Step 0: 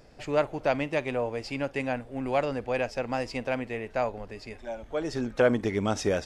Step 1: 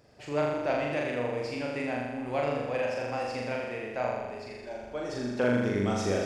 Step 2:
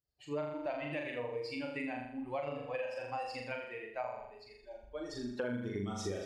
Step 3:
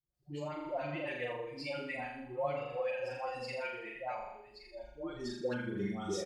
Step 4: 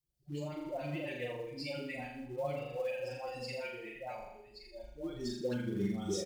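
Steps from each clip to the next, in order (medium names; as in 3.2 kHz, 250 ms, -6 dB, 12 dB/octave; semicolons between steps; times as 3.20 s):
high-pass 61 Hz 12 dB/octave; on a send: flutter echo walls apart 7 m, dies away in 1.3 s; on the sum: trim -6 dB
expander on every frequency bin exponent 2; compression 6:1, threshold -37 dBFS, peak gain reduction 12 dB; trim +2.5 dB
comb 5.6 ms, depth 59%; phase dispersion highs, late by 145 ms, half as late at 710 Hz
peaking EQ 1.2 kHz -12 dB 2 oct; in parallel at -8 dB: short-mantissa float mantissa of 2-bit; on the sum: trim +1 dB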